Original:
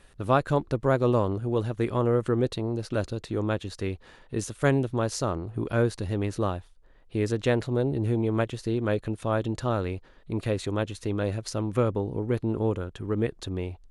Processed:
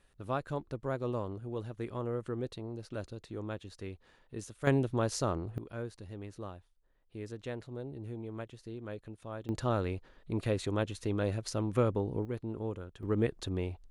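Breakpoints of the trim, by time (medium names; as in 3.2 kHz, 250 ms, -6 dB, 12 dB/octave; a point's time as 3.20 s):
-12 dB
from 4.67 s -4 dB
from 5.58 s -16 dB
from 9.49 s -4 dB
from 12.25 s -11 dB
from 13.03 s -3 dB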